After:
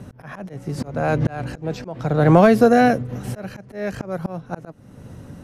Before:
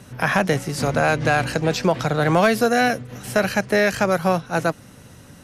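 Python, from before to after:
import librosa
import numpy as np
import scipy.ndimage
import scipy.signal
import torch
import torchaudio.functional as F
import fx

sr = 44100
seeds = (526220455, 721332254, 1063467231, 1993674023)

y = fx.tilt_shelf(x, sr, db=7.5, hz=1200.0)
y = fx.auto_swell(y, sr, attack_ms=457.0)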